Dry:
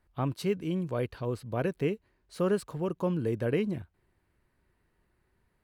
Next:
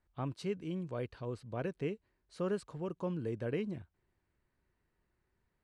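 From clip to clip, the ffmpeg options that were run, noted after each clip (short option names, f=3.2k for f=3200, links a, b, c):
-af "lowpass=f=9k:w=0.5412,lowpass=f=9k:w=1.3066,volume=-7.5dB"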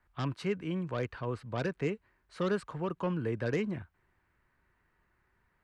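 -filter_complex "[0:a]lowshelf=f=490:g=5,acrossover=split=210|1000|2200[a][b][c][d];[c]aeval=exprs='0.015*sin(PI/2*3.55*val(0)/0.015)':c=same[e];[a][b][e][d]amix=inputs=4:normalize=0"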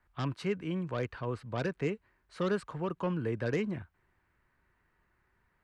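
-af anull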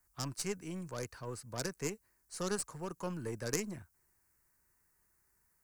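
-af "aexciter=amount=16:drive=4.2:freq=5.1k,aeval=exprs='0.2*(cos(1*acos(clip(val(0)/0.2,-1,1)))-cos(1*PI/2))+0.0447*(cos(3*acos(clip(val(0)/0.2,-1,1)))-cos(3*PI/2))+0.00562*(cos(6*acos(clip(val(0)/0.2,-1,1)))-cos(6*PI/2))':c=same,volume=2dB"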